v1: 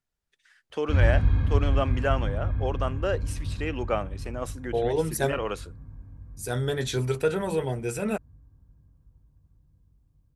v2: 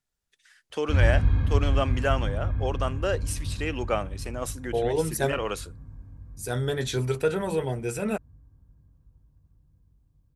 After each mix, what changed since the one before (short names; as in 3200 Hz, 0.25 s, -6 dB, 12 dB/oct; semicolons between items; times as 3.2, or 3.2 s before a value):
first voice: add high shelf 4000 Hz +9.5 dB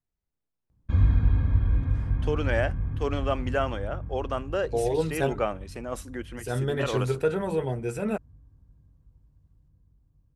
first voice: entry +1.50 s; master: add high shelf 2800 Hz -8.5 dB